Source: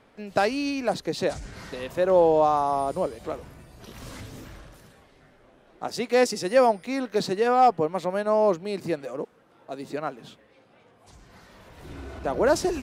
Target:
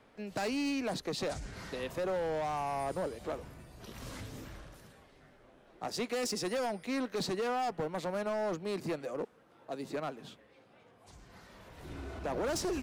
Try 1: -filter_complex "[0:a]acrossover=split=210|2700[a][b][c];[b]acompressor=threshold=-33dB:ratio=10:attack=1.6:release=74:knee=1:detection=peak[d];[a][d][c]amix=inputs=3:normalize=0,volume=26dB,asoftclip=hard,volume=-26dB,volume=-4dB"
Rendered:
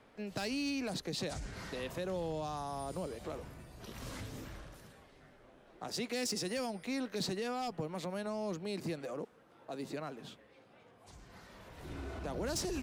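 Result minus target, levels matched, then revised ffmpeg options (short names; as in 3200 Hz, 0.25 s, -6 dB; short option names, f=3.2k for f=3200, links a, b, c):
compressor: peak gain reduction +8.5 dB
-filter_complex "[0:a]acrossover=split=210|2700[a][b][c];[b]acompressor=threshold=-23.5dB:ratio=10:attack=1.6:release=74:knee=1:detection=peak[d];[a][d][c]amix=inputs=3:normalize=0,volume=26dB,asoftclip=hard,volume=-26dB,volume=-4dB"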